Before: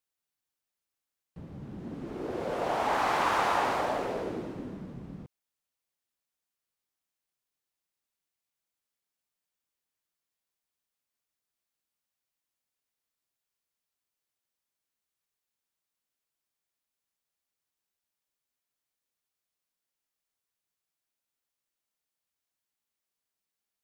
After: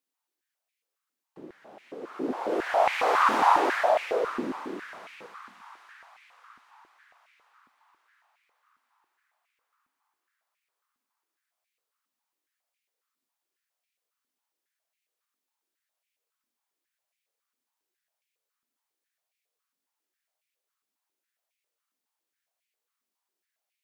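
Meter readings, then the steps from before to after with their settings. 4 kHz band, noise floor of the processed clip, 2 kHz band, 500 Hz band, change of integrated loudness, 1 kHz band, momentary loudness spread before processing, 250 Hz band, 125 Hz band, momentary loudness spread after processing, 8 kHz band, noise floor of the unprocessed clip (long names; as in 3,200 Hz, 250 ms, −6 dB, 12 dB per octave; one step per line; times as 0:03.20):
+2.0 dB, below −85 dBFS, +4.5 dB, +5.0 dB, +5.0 dB, +5.0 dB, 19 LU, +2.5 dB, below −10 dB, 21 LU, +0.5 dB, below −85 dBFS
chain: echo with a time of its own for lows and highs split 1,100 Hz, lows 94 ms, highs 778 ms, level −13 dB
high-pass on a step sequencer 7.3 Hz 250–2,300 Hz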